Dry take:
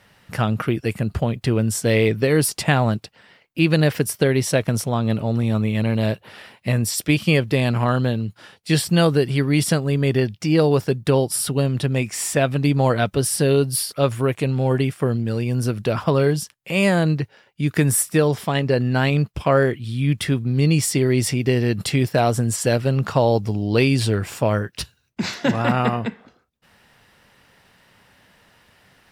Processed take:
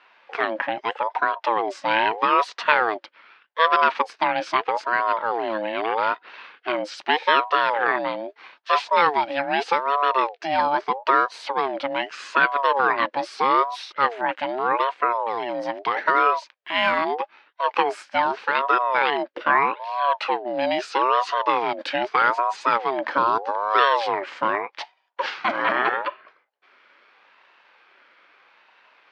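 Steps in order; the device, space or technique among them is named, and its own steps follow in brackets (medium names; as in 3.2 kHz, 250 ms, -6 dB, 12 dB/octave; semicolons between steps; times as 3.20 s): voice changer toy (ring modulator with a swept carrier 640 Hz, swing 35%, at 0.8 Hz; cabinet simulation 560–3900 Hz, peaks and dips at 680 Hz -6 dB, 1.6 kHz +5 dB, 3.6 kHz -4 dB); trim +3.5 dB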